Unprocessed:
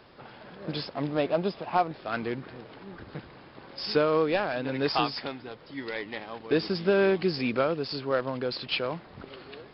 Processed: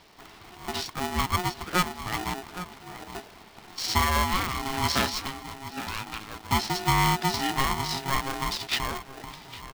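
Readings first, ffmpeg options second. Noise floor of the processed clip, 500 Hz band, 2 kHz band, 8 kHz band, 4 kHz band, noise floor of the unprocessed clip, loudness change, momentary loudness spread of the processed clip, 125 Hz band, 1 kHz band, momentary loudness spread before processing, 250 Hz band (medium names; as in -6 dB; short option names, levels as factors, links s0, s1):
-50 dBFS, -10.5 dB, +4.0 dB, no reading, +5.0 dB, -51 dBFS, +1.0 dB, 17 LU, +5.5 dB, +5.0 dB, 20 LU, -2.5 dB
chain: -filter_complex "[0:a]highshelf=f=4800:g=8,acrossover=split=1100[s0][s1];[s0]adynamicsmooth=sensitivity=6.5:basefreq=700[s2];[s2][s1]amix=inputs=2:normalize=0,asplit=2[s3][s4];[s4]adelay=816.3,volume=0.251,highshelf=f=4000:g=-18.4[s5];[s3][s5]amix=inputs=2:normalize=0,aeval=exprs='val(0)*sgn(sin(2*PI*540*n/s))':c=same"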